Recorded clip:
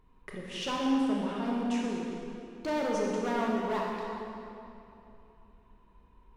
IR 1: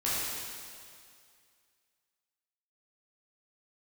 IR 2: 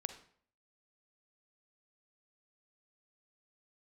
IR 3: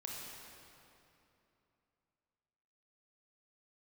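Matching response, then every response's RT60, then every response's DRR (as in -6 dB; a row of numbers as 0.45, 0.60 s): 3; 2.2, 0.55, 2.9 s; -9.5, 9.0, -3.0 dB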